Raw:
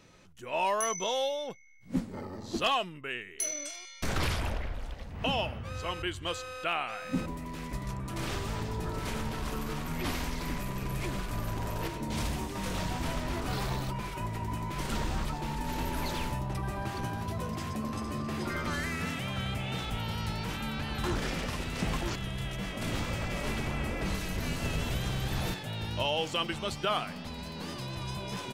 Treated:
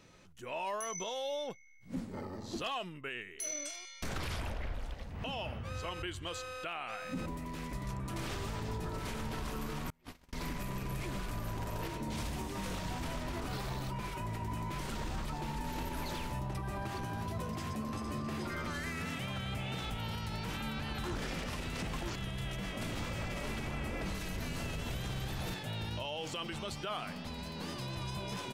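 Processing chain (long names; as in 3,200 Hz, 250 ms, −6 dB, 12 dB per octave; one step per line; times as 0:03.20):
0:09.90–0:10.33: noise gate −28 dBFS, range −36 dB
brickwall limiter −27.5 dBFS, peak gain reduction 8.5 dB
level −2 dB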